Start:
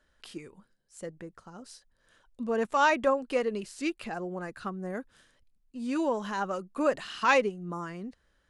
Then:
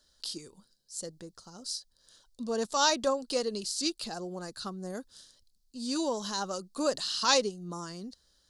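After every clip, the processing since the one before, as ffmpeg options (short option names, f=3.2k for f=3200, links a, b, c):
-af "highshelf=f=3.2k:t=q:w=3:g=12,volume=-2.5dB"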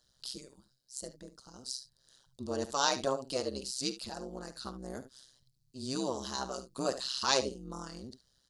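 -af "aecho=1:1:52|71:0.168|0.2,tremolo=f=130:d=0.974"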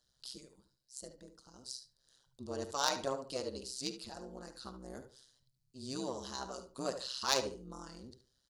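-filter_complex "[0:a]aeval=exprs='0.299*(cos(1*acos(clip(val(0)/0.299,-1,1)))-cos(1*PI/2))+0.0531*(cos(3*acos(clip(val(0)/0.299,-1,1)))-cos(3*PI/2))':c=same,asplit=2[a][b];[b]adelay=73,lowpass=f=2k:p=1,volume=-10dB,asplit=2[c][d];[d]adelay=73,lowpass=f=2k:p=1,volume=0.26,asplit=2[e][f];[f]adelay=73,lowpass=f=2k:p=1,volume=0.26[g];[c][e][g]amix=inputs=3:normalize=0[h];[a][h]amix=inputs=2:normalize=0,volume=1dB"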